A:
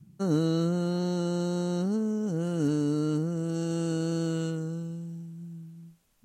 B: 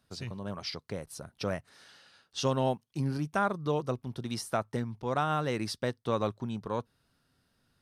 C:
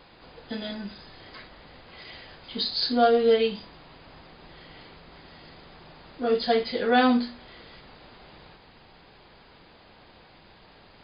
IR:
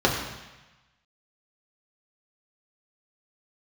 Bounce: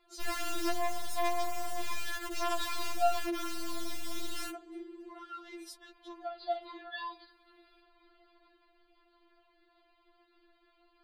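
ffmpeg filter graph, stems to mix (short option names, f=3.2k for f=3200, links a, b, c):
-filter_complex "[0:a]afwtdn=0.0282,aeval=exprs='(mod(15.8*val(0)+1,2)-1)/15.8':c=same,volume=-3.5dB[a];[1:a]aemphasis=mode=production:type=75fm,acompressor=threshold=-35dB:ratio=12,afwtdn=0.00251,volume=-6dB[b];[2:a]highshelf=f=4.2k:g=-11,volume=-11dB[c];[a][b][c]amix=inputs=3:normalize=0,afftfilt=real='re*4*eq(mod(b,16),0)':imag='im*4*eq(mod(b,16),0)':win_size=2048:overlap=0.75"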